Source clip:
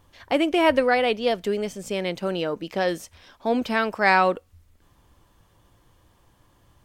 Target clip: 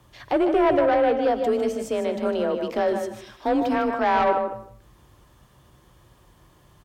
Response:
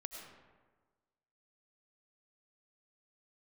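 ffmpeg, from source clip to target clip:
-filter_complex "[0:a]bandreject=f=60:t=h:w=6,bandreject=f=120:t=h:w=6,bandreject=f=180:t=h:w=6,acrossover=split=1300[s0][s1];[s1]acompressor=threshold=0.00708:ratio=12[s2];[s0][s2]amix=inputs=2:normalize=0,aecho=1:1:153|306|459:0.398|0.0637|0.0102,afreqshift=32,asoftclip=type=tanh:threshold=0.133,asplit=2[s3][s4];[1:a]atrim=start_sample=2205,afade=t=out:st=0.25:d=0.01,atrim=end_sample=11466[s5];[s4][s5]afir=irnorm=-1:irlink=0,volume=0.841[s6];[s3][s6]amix=inputs=2:normalize=0"

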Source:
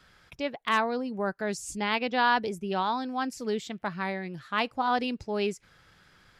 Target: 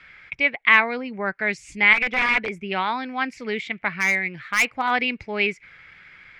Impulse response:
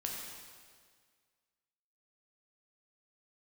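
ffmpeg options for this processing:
-filter_complex "[0:a]acrossover=split=790[s0][s1];[s1]crystalizer=i=4:c=0[s2];[s0][s2]amix=inputs=2:normalize=0,asettb=1/sr,asplit=3[s3][s4][s5];[s3]atrim=end=1.934[s6];[s4]atrim=start=1.93:end=2.65,asetpts=PTS-STARTPTS,afade=t=in:d=0.004:c=qsin,afade=t=out:st=0.716:d=0.004:c=qsin,aeval=exprs='(mod(8.91*val(0)+1,2)-1)/8.91':c=same[s7];[s5]atrim=start=2.646[s8];[s6][s7]acrossfade=d=0.004:c1=hsin:c2=qsin[s9];[s9][s8]acrossfade=d=0.004:c1=qsin:c2=hsin,lowpass=f=2200:t=q:w=8,asettb=1/sr,asplit=3[s10][s11][s12];[s10]atrim=end=3.884[s13];[s11]atrim=start=3.88:end=4.91,asetpts=PTS-STARTPTS,afade=t=in:d=0.004:c=qsin,afade=t=out:st=1.026:d=0.004:c=qsin,asoftclip=type=hard:threshold=0.178[s14];[s12]atrim=start=4.906[s15];[s13][s14]acrossfade=d=0.004:c1=hsin:c2=qsin[s16];[s16][s15]acrossfade=d=0.004:c1=qsin:c2=hsin,volume=1.12"

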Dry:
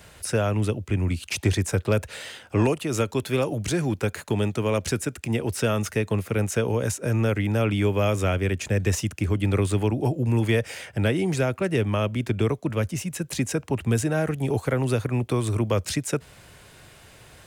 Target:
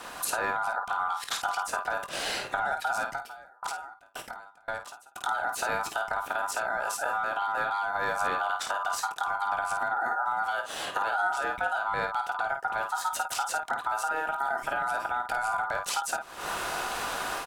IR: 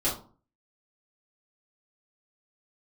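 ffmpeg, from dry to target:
-filter_complex "[0:a]equalizer=f=320:w=1.6:g=12.5,dynaudnorm=f=140:g=3:m=5.01,alimiter=limit=0.299:level=0:latency=1:release=72,acompressor=threshold=0.0178:ratio=4,aeval=exprs='val(0)*sin(2*PI*1100*n/s)':c=same,aecho=1:1:21|52:0.282|0.447,asettb=1/sr,asplit=3[s0][s1][s2];[s0]atrim=end=3.104[s3];[s1]atrim=start=3.1:end=5.16,asetpts=PTS-STARTPTS,afade=t=in:d=0.004:c=qsin,afade=t=out:st=2.056:d=0.004:c=qsin,aeval=exprs='val(0)*pow(10,-33*if(lt(mod(1.9*n/s,1),2*abs(1.9)/1000),1-mod(1.9*n/s,1)/(2*abs(1.9)/1000),(mod(1.9*n/s,1)-2*abs(1.9)/1000)/(1-2*abs(1.9)/1000))/20)':c=same[s4];[s2]atrim=start=5.156[s5];[s3][s4]acrossfade=d=0.004:c1=hsin:c2=qsin[s6];[s6][s5]acrossfade=d=0.004:c1=qsin:c2=hsin,volume=2.24"

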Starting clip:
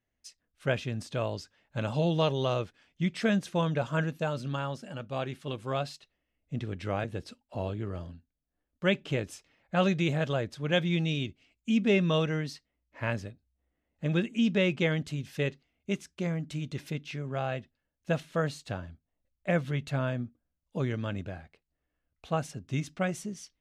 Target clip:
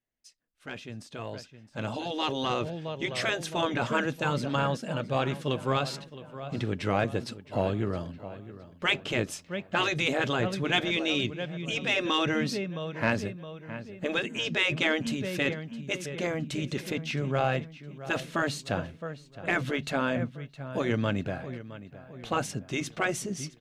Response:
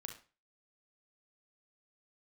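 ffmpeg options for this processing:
-filter_complex "[0:a]equalizer=f=72:t=o:w=0.61:g=-14,asplit=2[s0][s1];[s1]adelay=665,lowpass=f=4200:p=1,volume=0.168,asplit=2[s2][s3];[s3]adelay=665,lowpass=f=4200:p=1,volume=0.47,asplit=2[s4][s5];[s5]adelay=665,lowpass=f=4200:p=1,volume=0.47,asplit=2[s6][s7];[s7]adelay=665,lowpass=f=4200:p=1,volume=0.47[s8];[s0][s2][s4][s6][s8]amix=inputs=5:normalize=0,afftfilt=real='re*lt(hypot(re,im),0.2)':imag='im*lt(hypot(re,im),0.2)':win_size=1024:overlap=0.75,asoftclip=type=tanh:threshold=0.119,dynaudnorm=f=610:g=7:m=4.73,volume=0.501"

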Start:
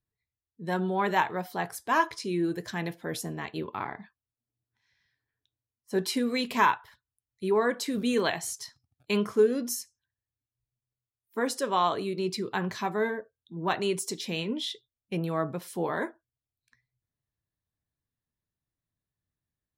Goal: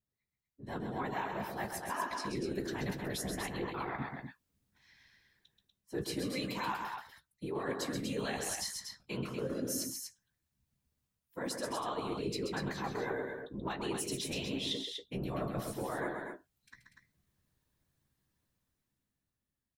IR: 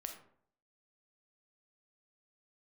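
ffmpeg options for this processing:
-filter_complex "[0:a]dynaudnorm=f=230:g=11:m=3.98,alimiter=limit=0.316:level=0:latency=1:release=283,areverse,acompressor=threshold=0.02:ratio=5,areverse,afftfilt=real='hypot(re,im)*cos(2*PI*random(0))':imag='hypot(re,im)*sin(2*PI*random(1))':win_size=512:overlap=0.75,asplit=2[s0][s1];[s1]adelay=15,volume=0.282[s2];[s0][s2]amix=inputs=2:normalize=0,aecho=1:1:131.2|242:0.501|0.501,volume=1.33"

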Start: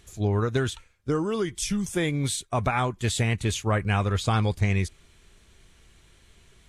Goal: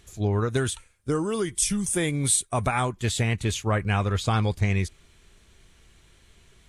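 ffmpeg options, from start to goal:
-filter_complex "[0:a]asettb=1/sr,asplit=3[s0][s1][s2];[s0]atrim=end=0.504[s3];[s1]atrim=start=0.5:end=2.91,asetpts=PTS-STARTPTS,afade=t=in:d=0.004:c=qsin,afade=t=out:st=2.406:d=0.004:c=qsin,equalizer=f=9300:t=o:w=0.49:g=15[s4];[s2]atrim=start=2.906[s5];[s3][s4]acrossfade=d=0.004:c1=hsin:c2=qsin[s6];[s6][s5]acrossfade=d=0.004:c1=qsin:c2=hsin"

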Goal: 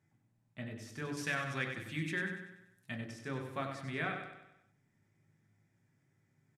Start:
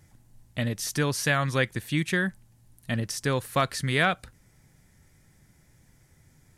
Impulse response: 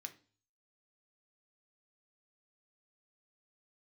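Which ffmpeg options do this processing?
-filter_complex "[0:a]asetnsamples=n=441:p=0,asendcmd='1.17 lowpass f 4000;2.97 lowpass f 1300',lowpass=f=1200:p=1,aecho=1:1:96|192|288|384|480|576:0.447|0.214|0.103|0.0494|0.0237|0.0114[s0];[1:a]atrim=start_sample=2205[s1];[s0][s1]afir=irnorm=-1:irlink=0,volume=0.531"

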